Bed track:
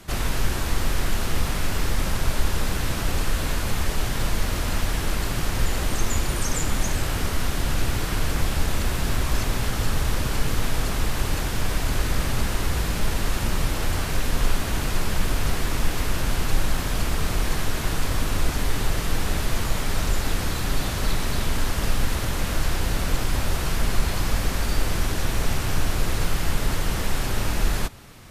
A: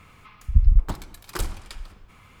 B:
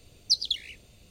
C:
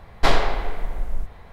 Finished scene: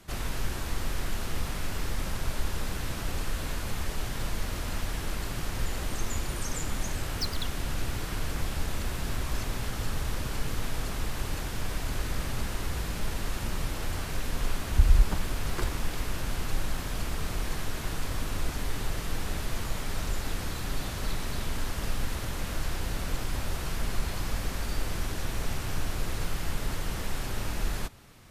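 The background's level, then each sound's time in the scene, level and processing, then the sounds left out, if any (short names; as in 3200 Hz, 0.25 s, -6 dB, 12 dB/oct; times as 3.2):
bed track -8 dB
6.91 add B -10 dB + decimation joined by straight lines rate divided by 2×
14.23 add A -3.5 dB + LPF 3500 Hz 6 dB/oct
not used: C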